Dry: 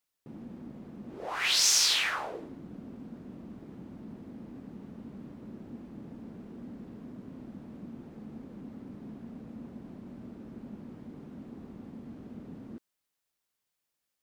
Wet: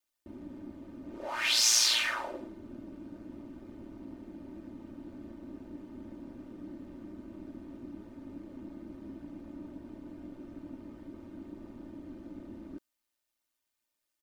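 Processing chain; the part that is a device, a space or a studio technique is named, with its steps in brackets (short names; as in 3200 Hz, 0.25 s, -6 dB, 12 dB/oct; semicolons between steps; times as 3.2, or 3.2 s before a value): ring-modulated robot voice (ring modulator 58 Hz; comb 3.3 ms, depth 83%)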